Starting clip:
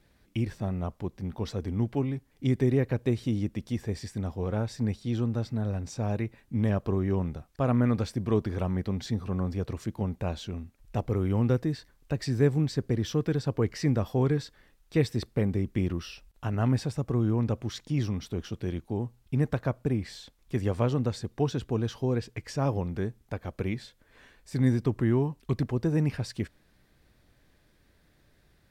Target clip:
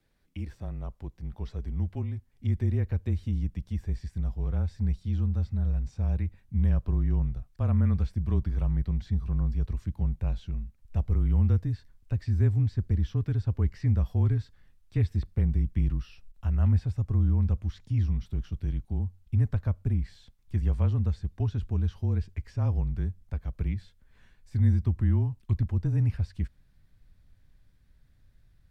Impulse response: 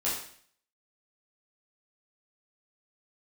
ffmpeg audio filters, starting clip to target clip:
-filter_complex "[0:a]acrossover=split=3600[link_01][link_02];[link_02]acompressor=threshold=-52dB:ratio=4:attack=1:release=60[link_03];[link_01][link_03]amix=inputs=2:normalize=0,afreqshift=-28,asubboost=boost=6.5:cutoff=140,volume=-8.5dB"

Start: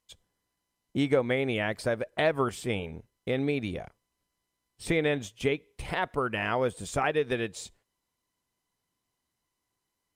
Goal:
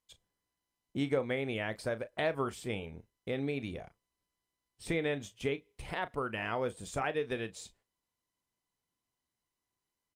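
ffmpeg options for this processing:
ffmpeg -i in.wav -filter_complex "[0:a]asplit=2[link_01][link_02];[link_02]adelay=36,volume=-14dB[link_03];[link_01][link_03]amix=inputs=2:normalize=0,volume=-6.5dB" out.wav

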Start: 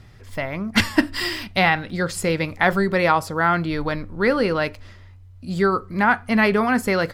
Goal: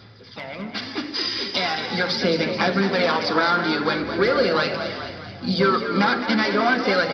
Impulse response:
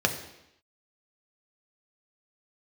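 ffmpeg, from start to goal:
-filter_complex "[0:a]asplit=3[link_01][link_02][link_03];[link_02]asetrate=33038,aresample=44100,atempo=1.33484,volume=-17dB[link_04];[link_03]asetrate=58866,aresample=44100,atempo=0.749154,volume=-12dB[link_05];[link_01][link_04][link_05]amix=inputs=3:normalize=0,aresample=11025,asoftclip=type=tanh:threshold=-14.5dB,aresample=44100,crystalizer=i=5:c=0,aphaser=in_gain=1:out_gain=1:delay=3.8:decay=0.42:speed=0.4:type=sinusoidal,acompressor=threshold=-27dB:ratio=6,asplit=8[link_06][link_07][link_08][link_09][link_10][link_11][link_12][link_13];[link_07]adelay=214,afreqshift=50,volume=-9dB[link_14];[link_08]adelay=428,afreqshift=100,volume=-14dB[link_15];[link_09]adelay=642,afreqshift=150,volume=-19.1dB[link_16];[link_10]adelay=856,afreqshift=200,volume=-24.1dB[link_17];[link_11]adelay=1070,afreqshift=250,volume=-29.1dB[link_18];[link_12]adelay=1284,afreqshift=300,volume=-34.2dB[link_19];[link_13]adelay=1498,afreqshift=350,volume=-39.2dB[link_20];[link_06][link_14][link_15][link_16][link_17][link_18][link_19][link_20]amix=inputs=8:normalize=0,dynaudnorm=framelen=240:gausssize=11:maxgain=10dB,highpass=140,asplit=2[link_21][link_22];[1:a]atrim=start_sample=2205[link_23];[link_22][link_23]afir=irnorm=-1:irlink=0,volume=-10dB[link_24];[link_21][link_24]amix=inputs=2:normalize=0,volume=-6.5dB"

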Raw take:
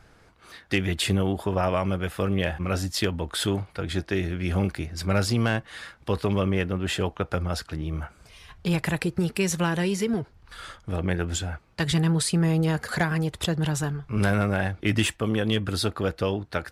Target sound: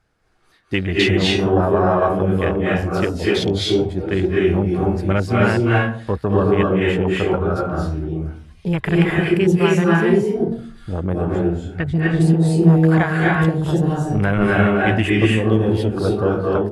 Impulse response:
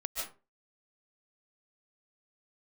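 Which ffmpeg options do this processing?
-filter_complex "[0:a]afwtdn=0.0316,asettb=1/sr,asplit=3[link_01][link_02][link_03];[link_01]atrim=end=11.304[link_04];[link_02]atrim=start=11.3:end=11.99,asetpts=PTS-STARTPTS,afade=type=in:duration=0.004:curve=qsin,afade=type=out:start_time=0.686:duration=0.004:curve=qsin,acrossover=split=3000[link_05][link_06];[link_06]acompressor=threshold=-57dB:ratio=4:attack=1:release=60[link_07];[link_05][link_07]amix=inputs=2:normalize=0[link_08];[link_03]atrim=start=11.986[link_09];[link_04][link_08]acrossfade=duration=0.004:curve1=hsin:curve2=qsin[link_10];[link_10][link_09]acrossfade=duration=0.004:curve1=qsin:curve2=hsin[link_11];[1:a]atrim=start_sample=2205,asetrate=25578,aresample=44100[link_12];[link_11][link_12]afir=irnorm=-1:irlink=0,volume=3.5dB"

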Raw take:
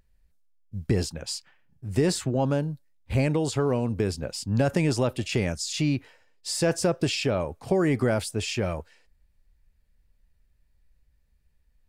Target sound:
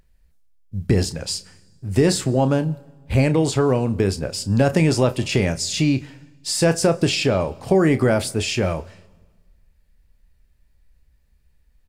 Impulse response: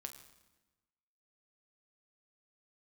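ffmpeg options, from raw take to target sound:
-filter_complex "[0:a]asplit=2[link_01][link_02];[link_02]adelay=31,volume=-12dB[link_03];[link_01][link_03]amix=inputs=2:normalize=0,asplit=2[link_04][link_05];[1:a]atrim=start_sample=2205,asetrate=36162,aresample=44100[link_06];[link_05][link_06]afir=irnorm=-1:irlink=0,volume=-7dB[link_07];[link_04][link_07]amix=inputs=2:normalize=0,volume=4dB"

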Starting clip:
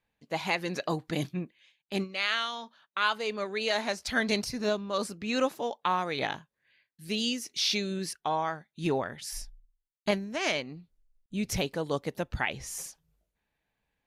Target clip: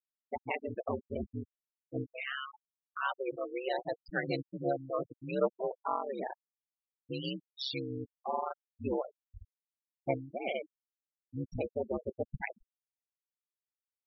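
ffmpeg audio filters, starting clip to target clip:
ffmpeg -i in.wav -af "lowpass=frequency=5800:width=0.5412,lowpass=frequency=5800:width=1.3066,bandreject=frequency=111.2:width_type=h:width=4,bandreject=frequency=222.4:width_type=h:width=4,bandreject=frequency=333.6:width_type=h:width=4,bandreject=frequency=444.8:width_type=h:width=4,bandreject=frequency=556:width_type=h:width=4,bandreject=frequency=667.2:width_type=h:width=4,bandreject=frequency=778.4:width_type=h:width=4,bandreject=frequency=889.6:width_type=h:width=4,bandreject=frequency=1000.8:width_type=h:width=4,bandreject=frequency=1112:width_type=h:width=4,bandreject=frequency=1223.2:width_type=h:width=4,bandreject=frequency=1334.4:width_type=h:width=4,bandreject=frequency=1445.6:width_type=h:width=4,bandreject=frequency=1556.8:width_type=h:width=4,bandreject=frequency=1668:width_type=h:width=4,bandreject=frequency=1779.2:width_type=h:width=4,bandreject=frequency=1890.4:width_type=h:width=4,bandreject=frequency=2001.6:width_type=h:width=4,bandreject=frequency=2112.8:width_type=h:width=4,bandreject=frequency=2224:width_type=h:width=4,bandreject=frequency=2335.2:width_type=h:width=4,bandreject=frequency=2446.4:width_type=h:width=4,bandreject=frequency=2557.6:width_type=h:width=4,adynamicequalizer=threshold=0.00501:dfrequency=510:dqfactor=1.8:tfrequency=510:tqfactor=1.8:attack=5:release=100:ratio=0.375:range=3:mode=boostabove:tftype=bell,aeval=exprs='val(0)*sin(2*PI*68*n/s)':channel_layout=same,afftfilt=real='re*gte(hypot(re,im),0.0631)':imag='im*gte(hypot(re,im),0.0631)':win_size=1024:overlap=0.75,volume=-3.5dB" out.wav

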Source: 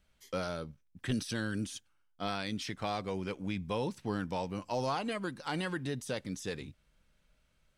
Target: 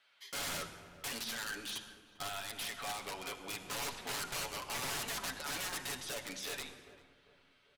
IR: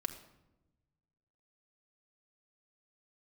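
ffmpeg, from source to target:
-filter_complex "[0:a]highpass=840,highshelf=frequency=5300:width_type=q:width=1.5:gain=-9.5,alimiter=level_in=9dB:limit=-24dB:level=0:latency=1:release=17,volume=-9dB,asettb=1/sr,asplit=3[link_01][link_02][link_03];[link_01]atrim=end=1.184[link_04];[link_02]atrim=start=1.18:end=3.49,asetpts=PTS-STARTPTS,afade=type=in:duration=0.004:curve=qsin,afade=type=out:start_time=2.306:duration=0.004:curve=qsin,acompressor=threshold=-46dB:ratio=3[link_05];[link_03]atrim=start=3.486[link_06];[link_04][link_05]acrossfade=duration=0.004:curve1=hsin:curve2=qsin[link_07];[link_07][link_06]acrossfade=duration=0.004:curve1=qsin:curve2=hsin,flanger=delay=7.6:depth=2.7:regen=47:speed=1.5:shape=sinusoidal,aeval=exprs='(mod(188*val(0)+1,2)-1)/188':channel_layout=same,asplit=2[link_08][link_09];[link_09]adelay=396,lowpass=frequency=1400:poles=1,volume=-16dB,asplit=2[link_10][link_11];[link_11]adelay=396,lowpass=frequency=1400:poles=1,volume=0.49,asplit=2[link_12][link_13];[link_13]adelay=396,lowpass=frequency=1400:poles=1,volume=0.49,asplit=2[link_14][link_15];[link_15]adelay=396,lowpass=frequency=1400:poles=1,volume=0.49[link_16];[link_08][link_10][link_12][link_14][link_16]amix=inputs=5:normalize=0[link_17];[1:a]atrim=start_sample=2205,asetrate=26019,aresample=44100[link_18];[link_17][link_18]afir=irnorm=-1:irlink=0,volume=9.5dB"

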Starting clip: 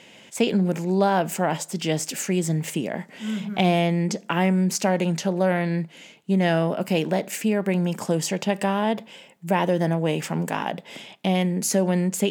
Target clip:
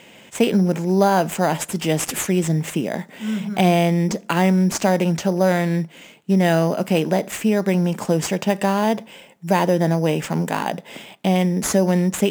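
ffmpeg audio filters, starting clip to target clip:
ffmpeg -i in.wav -filter_complex "[0:a]asettb=1/sr,asplit=3[link_01][link_02][link_03];[link_01]atrim=end=1.464[link_04];[link_02]atrim=start=1.46:end=2.27,asetpts=PTS-STARTPTS,afade=type=in:duration=0.004:curve=qsin,afade=type=out:start_time=0.806:duration=0.004:curve=qsin,equalizer=frequency=11000:width_type=o:width=0.51:gain=12[link_05];[link_03]atrim=start=2.266[link_06];[link_04][link_05]acrossfade=duration=0.004:curve1=hsin:curve2=qsin[link_07];[link_07][link_06]acrossfade=duration=0.004:curve1=qsin:curve2=hsin,asplit=2[link_08][link_09];[link_09]acrusher=samples=8:mix=1:aa=0.000001,volume=-4.5dB[link_10];[link_08][link_10]amix=inputs=2:normalize=0" out.wav

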